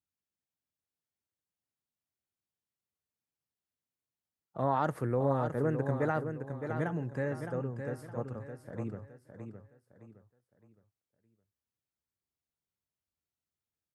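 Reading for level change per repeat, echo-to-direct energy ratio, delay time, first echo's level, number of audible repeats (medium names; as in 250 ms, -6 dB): -9.5 dB, -7.0 dB, 614 ms, -7.5 dB, 3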